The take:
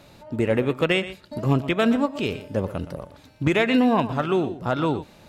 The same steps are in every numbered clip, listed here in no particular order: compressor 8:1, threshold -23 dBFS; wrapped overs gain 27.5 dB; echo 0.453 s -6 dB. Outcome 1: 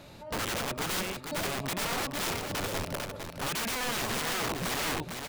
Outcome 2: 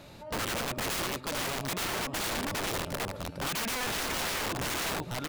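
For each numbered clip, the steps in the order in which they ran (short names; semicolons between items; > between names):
compressor > wrapped overs > echo; compressor > echo > wrapped overs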